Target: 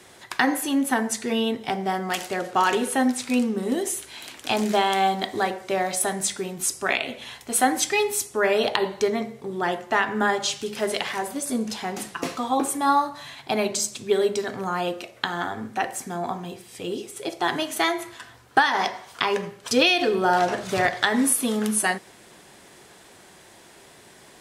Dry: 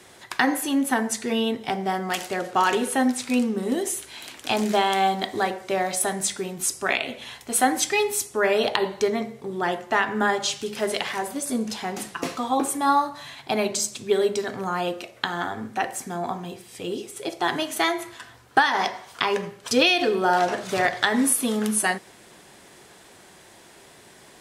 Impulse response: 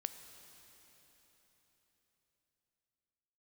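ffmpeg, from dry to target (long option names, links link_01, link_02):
-filter_complex "[0:a]asettb=1/sr,asplit=3[link_01][link_02][link_03];[link_01]atrim=end=20.134[link_04];[link_02]atrim=start=20.13:end=20.9,asetpts=PTS-STARTPTS,afade=type=in:duration=0.004:curve=qsin,afade=type=out:start_time=0.766:duration=0.004:curve=qsin,equalizer=frequency=78:width=1:gain=9.5[link_05];[link_03]atrim=start=20.896[link_06];[link_04][link_05]acrossfade=duration=0.004:curve1=hsin:curve2=qsin[link_07];[link_07][link_06]acrossfade=duration=0.004:curve1=qsin:curve2=hsin"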